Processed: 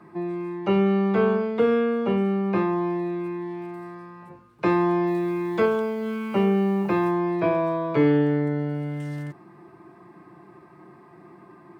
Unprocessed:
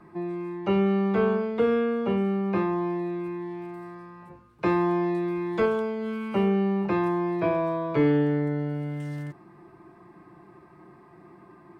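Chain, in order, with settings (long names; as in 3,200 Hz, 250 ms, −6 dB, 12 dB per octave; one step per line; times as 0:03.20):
high-pass filter 100 Hz
0:05.07–0:07.11: bit-depth reduction 10 bits, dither none
level +2.5 dB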